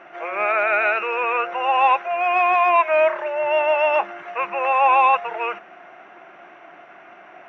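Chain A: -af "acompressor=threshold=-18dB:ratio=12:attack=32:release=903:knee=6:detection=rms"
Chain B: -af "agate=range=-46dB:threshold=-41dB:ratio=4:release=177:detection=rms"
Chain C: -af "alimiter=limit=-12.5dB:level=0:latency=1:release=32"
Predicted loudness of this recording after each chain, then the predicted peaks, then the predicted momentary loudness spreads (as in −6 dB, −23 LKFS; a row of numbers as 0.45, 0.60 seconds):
−24.0, −19.0, −21.5 LKFS; −12.0, −6.5, −12.5 dBFS; 8, 11, 8 LU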